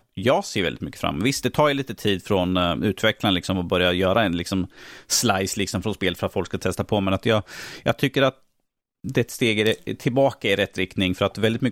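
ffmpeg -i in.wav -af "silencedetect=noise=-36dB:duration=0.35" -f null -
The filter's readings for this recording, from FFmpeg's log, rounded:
silence_start: 8.30
silence_end: 9.04 | silence_duration: 0.74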